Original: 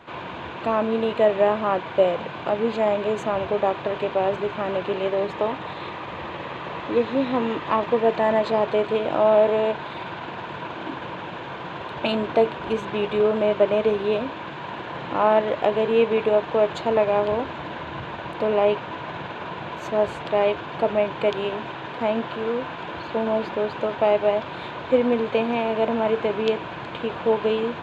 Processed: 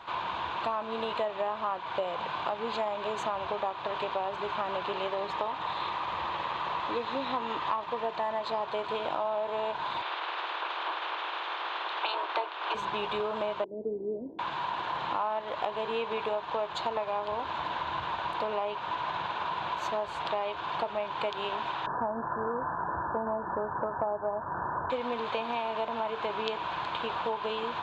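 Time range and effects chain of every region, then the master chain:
0:10.01–0:12.74: ceiling on every frequency bin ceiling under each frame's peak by 14 dB + Butterworth high-pass 310 Hz 96 dB per octave + high-frequency loss of the air 140 metres
0:13.64–0:14.39: inverse Chebyshev low-pass filter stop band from 1,100 Hz, stop band 50 dB + low shelf with overshoot 170 Hz −10 dB, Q 1.5
0:21.86–0:24.90: linear-phase brick-wall low-pass 1,800 Hz + low-shelf EQ 320 Hz +9.5 dB
whole clip: graphic EQ with 10 bands 125 Hz −6 dB, 250 Hz −7 dB, 500 Hz −5 dB, 1,000 Hz +9 dB, 2,000 Hz −3 dB, 4,000 Hz +7 dB; downward compressor, threshold −26 dBFS; level −2.5 dB

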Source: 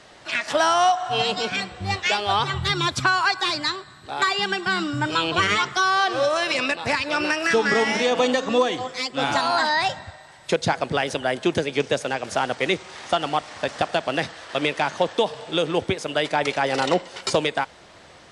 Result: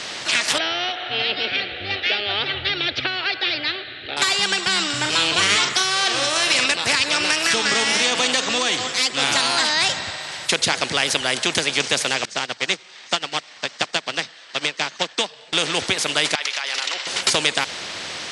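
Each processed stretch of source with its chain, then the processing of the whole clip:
0:00.58–0:04.17: Butterworth low-pass 3,300 Hz + phaser with its sweep stopped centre 430 Hz, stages 4
0:04.90–0:06.66: double-tracking delay 40 ms −8 dB + one half of a high-frequency compander encoder only
0:12.25–0:15.53: Chebyshev band-pass filter 110–8,500 Hz, order 5 + expander for the loud parts 2.5 to 1, over −33 dBFS
0:16.35–0:17.07: high-pass filter 1,400 Hz + downward compressor 5 to 1, threshold −33 dBFS + parametric band 8,600 Hz −8.5 dB 0.71 octaves
whole clip: meter weighting curve D; every bin compressed towards the loudest bin 2 to 1; level −1.5 dB

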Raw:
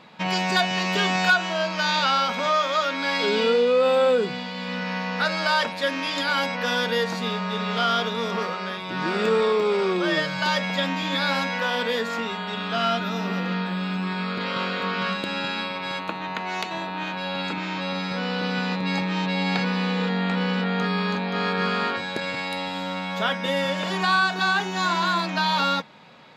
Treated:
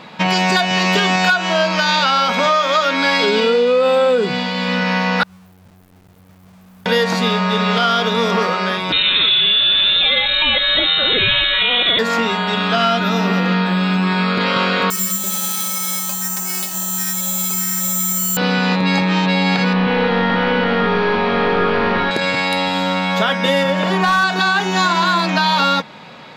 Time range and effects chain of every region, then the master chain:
0:05.23–0:06.86: inverse Chebyshev band-stop filter 350–9,100 Hz, stop band 60 dB + bit-depth reduction 10 bits, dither none
0:08.92–0:11.99: low-shelf EQ 160 Hz +10 dB + voice inversion scrambler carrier 3,900 Hz
0:14.90–0:18.37: stiff-string resonator 190 Hz, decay 0.25 s, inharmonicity 0.008 + bad sample-rate conversion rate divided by 6×, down none, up zero stuff
0:19.73–0:22.11: linear delta modulator 32 kbit/s, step −38.5 dBFS + low-pass filter 4,000 Hz 24 dB per octave + multi-tap delay 138/191 ms −4/−19 dB
0:23.63–0:24.24: parametric band 7,600 Hz −8.5 dB 2.7 octaves + gain into a clipping stage and back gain 18 dB
whole clip: downward compressor, threshold −23 dBFS; boost into a limiter +15 dB; level −3.5 dB

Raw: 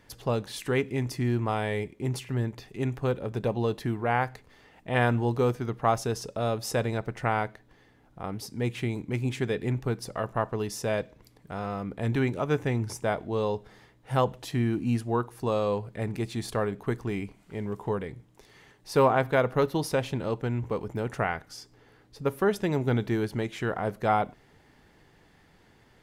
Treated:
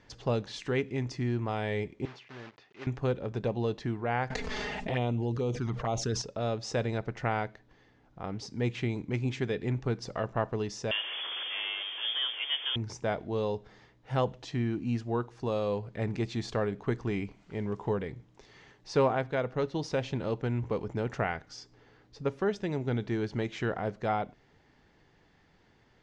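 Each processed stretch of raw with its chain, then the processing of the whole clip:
0:02.05–0:02.87: one scale factor per block 3 bits + high-pass filter 1,500 Hz 6 dB per octave + head-to-tape spacing loss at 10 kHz 30 dB
0:04.30–0:06.22: high-shelf EQ 11,000 Hz +9 dB + flanger swept by the level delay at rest 5.2 ms, full sweep at −21 dBFS + envelope flattener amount 70%
0:10.91–0:12.76: linear delta modulator 32 kbit/s, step −28 dBFS + voice inversion scrambler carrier 3,400 Hz + high-pass filter 350 Hz 24 dB per octave
whole clip: Butterworth low-pass 6,800 Hz 36 dB per octave; dynamic equaliser 1,100 Hz, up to −4 dB, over −39 dBFS, Q 1.8; speech leveller within 3 dB 0.5 s; level −3.5 dB

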